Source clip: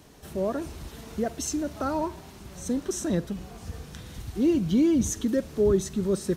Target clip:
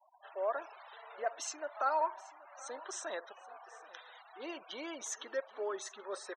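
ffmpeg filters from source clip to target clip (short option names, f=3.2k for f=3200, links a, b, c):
-filter_complex "[0:a]highpass=f=700:w=0.5412,highpass=f=700:w=1.3066,aemphasis=mode=reproduction:type=75fm,afftfilt=real='re*gte(hypot(re,im),0.00316)':imag='im*gte(hypot(re,im),0.00316)':win_size=1024:overlap=0.75,asplit=2[a][b];[b]aecho=0:1:779:0.0944[c];[a][c]amix=inputs=2:normalize=0,volume=1dB"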